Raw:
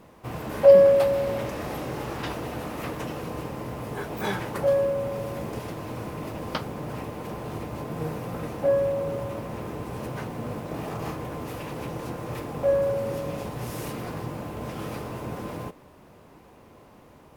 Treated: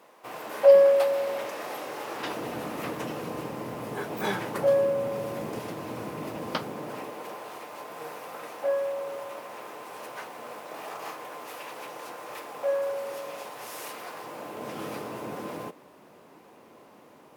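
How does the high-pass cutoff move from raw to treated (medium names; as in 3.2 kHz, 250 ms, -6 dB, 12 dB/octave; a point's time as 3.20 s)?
2.05 s 500 Hz
2.50 s 170 Hz
6.55 s 170 Hz
7.52 s 670 Hz
14.15 s 670 Hz
14.76 s 230 Hz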